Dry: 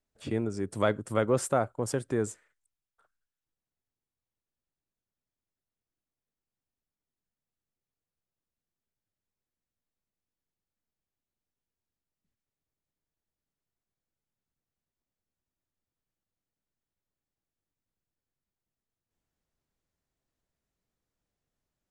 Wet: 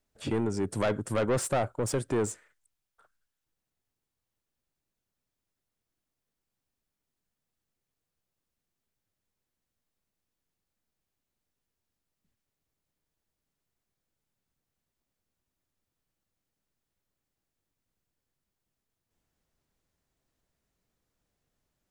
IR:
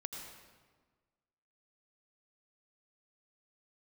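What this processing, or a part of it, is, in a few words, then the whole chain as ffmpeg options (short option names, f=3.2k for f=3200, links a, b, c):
saturation between pre-emphasis and de-emphasis: -af "highshelf=f=5.4k:g=10,asoftclip=type=tanh:threshold=-27.5dB,highshelf=f=5.4k:g=-10,volume=5.5dB"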